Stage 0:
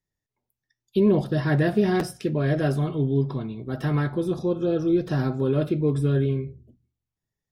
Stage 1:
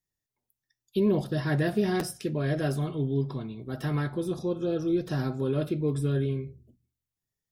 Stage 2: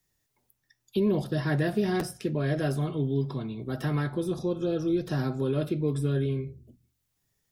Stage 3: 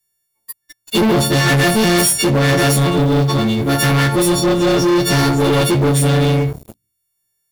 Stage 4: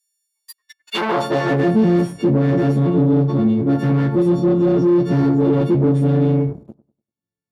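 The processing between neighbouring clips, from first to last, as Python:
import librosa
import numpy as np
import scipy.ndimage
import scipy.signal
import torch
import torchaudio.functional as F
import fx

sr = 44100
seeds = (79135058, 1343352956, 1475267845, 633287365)

y1 = fx.high_shelf(x, sr, hz=4700.0, db=9.0)
y1 = y1 * librosa.db_to_amplitude(-5.0)
y2 = fx.band_squash(y1, sr, depth_pct=40)
y3 = fx.freq_snap(y2, sr, grid_st=4)
y3 = fx.leveller(y3, sr, passes=5)
y3 = y3 * librosa.db_to_amplitude(3.5)
y4 = fx.filter_sweep_bandpass(y3, sr, from_hz=6900.0, to_hz=240.0, start_s=0.34, end_s=1.75, q=1.1)
y4 = fx.echo_bbd(y4, sr, ms=98, stages=1024, feedback_pct=30, wet_db=-18.0)
y4 = y4 * librosa.db_to_amplitude(2.5)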